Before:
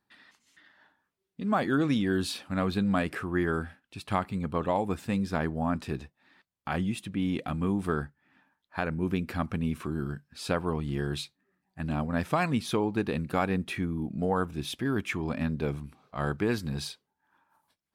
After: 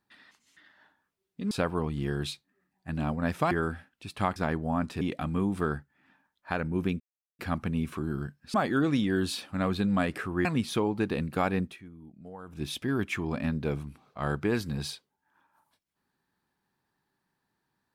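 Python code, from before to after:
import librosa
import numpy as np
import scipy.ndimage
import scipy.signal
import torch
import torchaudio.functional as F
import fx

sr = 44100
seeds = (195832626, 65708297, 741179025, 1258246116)

y = fx.edit(x, sr, fx.swap(start_s=1.51, length_s=1.91, other_s=10.42, other_length_s=2.0),
    fx.cut(start_s=4.27, length_s=1.01),
    fx.cut(start_s=5.93, length_s=1.35),
    fx.insert_silence(at_s=9.27, length_s=0.39),
    fx.fade_down_up(start_s=13.58, length_s=1.01, db=-17.0, fade_s=0.16), tone=tone)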